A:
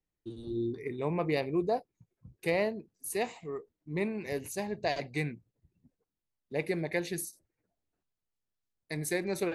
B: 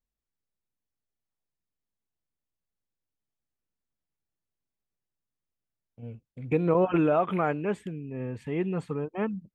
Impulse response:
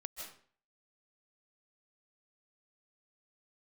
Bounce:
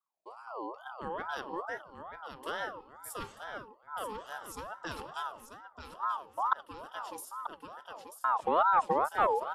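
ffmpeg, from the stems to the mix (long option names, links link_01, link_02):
-filter_complex "[0:a]lowshelf=frequency=240:gain=-7.5,volume=-7.5dB,asplit=3[link_01][link_02][link_03];[link_02]volume=-17.5dB[link_04];[link_03]volume=-7.5dB[link_05];[1:a]agate=range=-33dB:threshold=-42dB:ratio=3:detection=peak,volume=-1.5dB,asplit=3[link_06][link_07][link_08];[link_06]atrim=end=6.53,asetpts=PTS-STARTPTS,afade=type=out:start_time=6.526:duration=0.004:curve=hsin[link_09];[link_07]atrim=start=6.53:end=8.24,asetpts=PTS-STARTPTS,volume=0[link_10];[link_08]atrim=start=8.24,asetpts=PTS-STARTPTS,afade=type=in:duration=0.004:curve=hsin[link_11];[link_09][link_10][link_11]concat=n=3:v=0:a=1,asplit=3[link_12][link_13][link_14];[link_13]volume=-10dB[link_15];[link_14]apad=whole_len=421073[link_16];[link_01][link_16]sidechaincompress=threshold=-43dB:ratio=5:attack=30:release=888[link_17];[2:a]atrim=start_sample=2205[link_18];[link_04][link_18]afir=irnorm=-1:irlink=0[link_19];[link_05][link_15]amix=inputs=2:normalize=0,aecho=0:1:937|1874|2811|3748|4685|5622:1|0.45|0.202|0.0911|0.041|0.0185[link_20];[link_17][link_12][link_19][link_20]amix=inputs=4:normalize=0,bass=frequency=250:gain=14,treble=frequency=4000:gain=4,aeval=exprs='val(0)*sin(2*PI*910*n/s+910*0.3/2.3*sin(2*PI*2.3*n/s))':channel_layout=same"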